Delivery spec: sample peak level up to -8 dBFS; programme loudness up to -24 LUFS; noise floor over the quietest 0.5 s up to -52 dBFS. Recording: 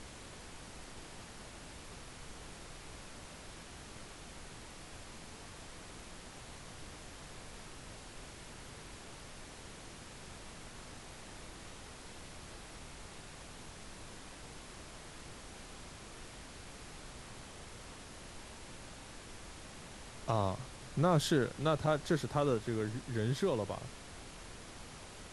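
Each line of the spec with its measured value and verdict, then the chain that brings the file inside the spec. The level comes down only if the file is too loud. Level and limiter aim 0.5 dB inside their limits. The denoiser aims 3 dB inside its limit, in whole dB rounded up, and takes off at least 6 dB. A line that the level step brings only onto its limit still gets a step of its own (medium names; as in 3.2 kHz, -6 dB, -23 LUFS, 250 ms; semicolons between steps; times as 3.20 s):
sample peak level -17.5 dBFS: pass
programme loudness -41.5 LUFS: pass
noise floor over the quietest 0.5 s -50 dBFS: fail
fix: noise reduction 6 dB, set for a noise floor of -50 dBFS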